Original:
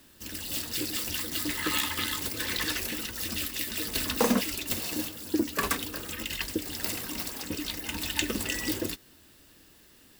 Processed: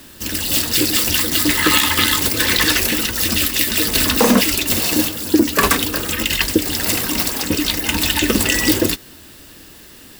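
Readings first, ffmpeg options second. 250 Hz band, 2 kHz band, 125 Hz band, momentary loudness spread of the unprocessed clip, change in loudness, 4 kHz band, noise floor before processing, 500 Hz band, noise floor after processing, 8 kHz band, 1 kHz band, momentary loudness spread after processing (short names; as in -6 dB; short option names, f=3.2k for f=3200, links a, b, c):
+14.0 dB, +14.5 dB, +15.0 dB, 6 LU, +14.5 dB, +15.0 dB, -57 dBFS, +13.5 dB, -42 dBFS, +15.0 dB, +14.0 dB, 5 LU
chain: -af "alimiter=level_in=16.5dB:limit=-1dB:release=50:level=0:latency=1,volume=-1dB"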